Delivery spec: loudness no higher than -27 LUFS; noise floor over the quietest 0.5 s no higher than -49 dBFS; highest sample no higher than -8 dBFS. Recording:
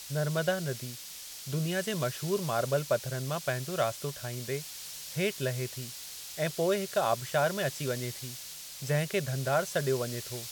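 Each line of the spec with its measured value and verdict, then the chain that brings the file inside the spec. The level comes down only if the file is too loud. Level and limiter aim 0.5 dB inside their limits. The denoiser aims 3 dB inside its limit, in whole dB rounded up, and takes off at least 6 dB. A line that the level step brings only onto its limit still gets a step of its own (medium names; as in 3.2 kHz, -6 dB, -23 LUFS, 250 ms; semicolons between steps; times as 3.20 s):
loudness -32.0 LUFS: pass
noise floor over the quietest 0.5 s -44 dBFS: fail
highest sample -14.5 dBFS: pass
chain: noise reduction 8 dB, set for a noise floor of -44 dBFS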